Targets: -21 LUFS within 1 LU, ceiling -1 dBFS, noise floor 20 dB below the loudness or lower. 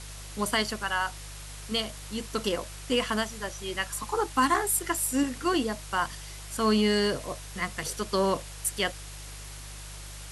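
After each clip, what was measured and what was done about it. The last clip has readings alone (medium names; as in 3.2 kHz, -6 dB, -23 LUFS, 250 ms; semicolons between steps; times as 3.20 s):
hum 50 Hz; highest harmonic 150 Hz; hum level -41 dBFS; noise floor -42 dBFS; noise floor target -49 dBFS; loudness -28.5 LUFS; peak level -11.5 dBFS; loudness target -21.0 LUFS
-> de-hum 50 Hz, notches 3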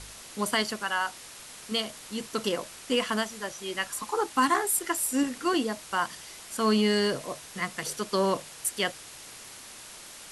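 hum not found; noise floor -46 dBFS; noise floor target -49 dBFS
-> noise reduction 6 dB, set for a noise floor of -46 dBFS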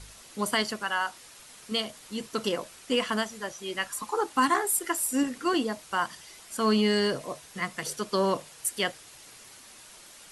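noise floor -51 dBFS; loudness -29.0 LUFS; peak level -11.5 dBFS; loudness target -21.0 LUFS
-> trim +8 dB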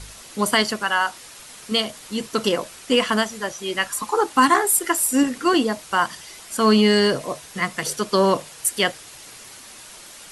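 loudness -21.0 LUFS; peak level -3.5 dBFS; noise floor -43 dBFS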